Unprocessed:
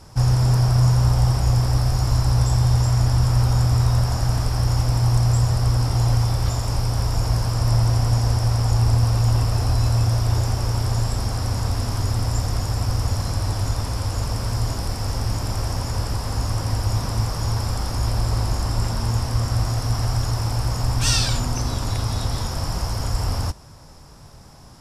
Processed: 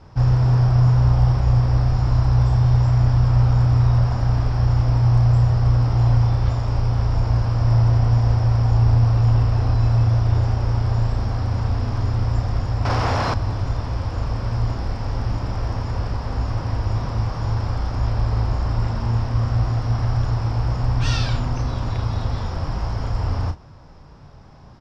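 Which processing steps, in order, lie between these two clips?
air absorption 230 m; doubler 34 ms -8 dB; 12.85–13.34 overdrive pedal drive 23 dB, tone 3600 Hz, clips at -10 dBFS

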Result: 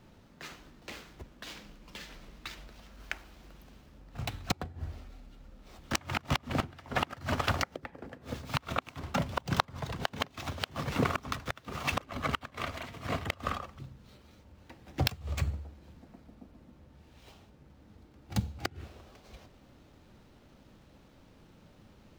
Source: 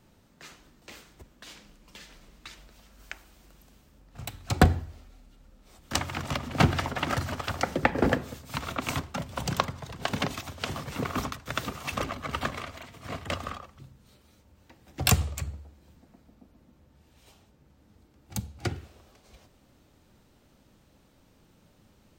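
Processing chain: median filter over 5 samples; flipped gate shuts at -18 dBFS, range -26 dB; gain +3.5 dB

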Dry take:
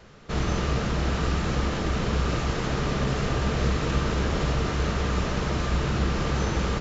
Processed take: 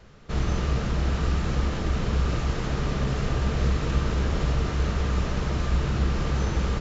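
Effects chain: low shelf 110 Hz +8 dB; gain -3.5 dB

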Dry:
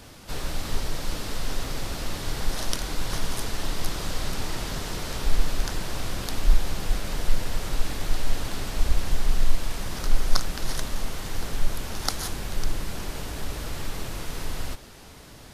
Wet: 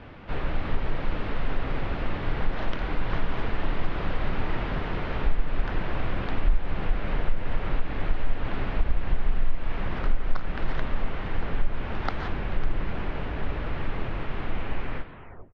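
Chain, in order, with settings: tape stop at the end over 1.37 s; compressor 3:1, threshold -20 dBFS, peak gain reduction 9 dB; LPF 2600 Hz 24 dB/oct; on a send: feedback echo 0.118 s, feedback 41%, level -20 dB; on the sum: gain +3 dB

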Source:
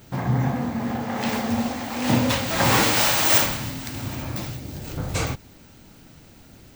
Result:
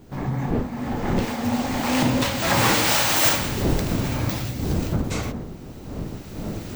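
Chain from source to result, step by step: wind noise 270 Hz -28 dBFS; recorder AGC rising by 13 dB/s; Doppler pass-by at 3.01, 15 m/s, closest 20 m

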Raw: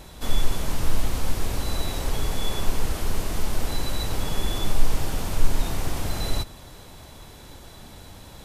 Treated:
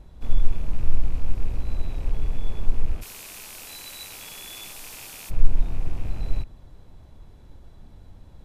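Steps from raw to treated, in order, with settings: rattling part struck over -36 dBFS, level -24 dBFS; tilt -3 dB/oct, from 3.01 s +3.5 dB/oct, from 5.29 s -3 dB/oct; gain -13 dB

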